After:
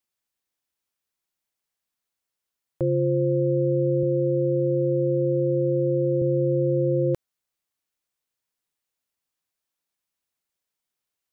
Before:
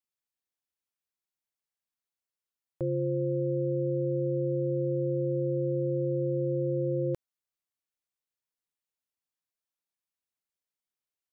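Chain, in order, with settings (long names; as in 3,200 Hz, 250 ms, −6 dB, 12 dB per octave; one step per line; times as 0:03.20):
0:04.03–0:06.22: high-pass filter 110 Hz
level +7 dB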